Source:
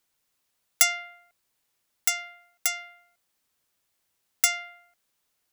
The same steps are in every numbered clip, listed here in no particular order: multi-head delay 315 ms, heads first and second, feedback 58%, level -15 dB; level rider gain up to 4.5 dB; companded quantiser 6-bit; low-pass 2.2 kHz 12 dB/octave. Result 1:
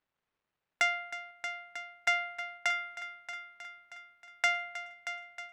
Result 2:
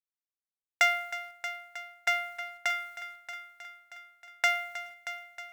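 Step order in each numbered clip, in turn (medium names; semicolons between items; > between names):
companded quantiser > multi-head delay > level rider > low-pass; low-pass > companded quantiser > level rider > multi-head delay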